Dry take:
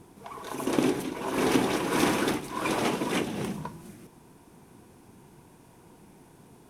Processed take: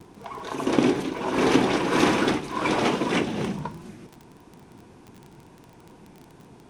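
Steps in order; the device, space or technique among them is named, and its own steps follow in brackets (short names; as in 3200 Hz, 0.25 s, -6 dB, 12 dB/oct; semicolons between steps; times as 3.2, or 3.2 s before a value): lo-fi chain (LPF 6200 Hz 12 dB/oct; wow and flutter; crackle 21/s -39 dBFS); gain +4.5 dB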